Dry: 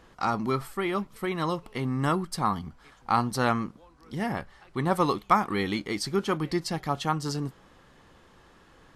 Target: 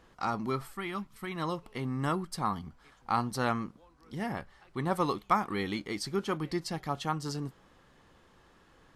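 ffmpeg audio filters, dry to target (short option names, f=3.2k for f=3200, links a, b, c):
-filter_complex "[0:a]asettb=1/sr,asplit=3[a][b][c];[a]atrim=end=0.764[d];[b]atrim=start=0.76:end=1.36,asetpts=PTS-STARTPTS,afade=t=in:d=0.004:c=qsin,afade=t=out:st=0.596:d=0.004:c=qsin,equalizer=f=490:t=o:w=0.98:g=-10.5[e];[c]atrim=start=1.356[f];[d][e]acrossfade=d=0.004:c1=hsin:c2=qsin[g];[g][f]acrossfade=d=0.004:c1=qsin:c2=hsin,volume=-5dB"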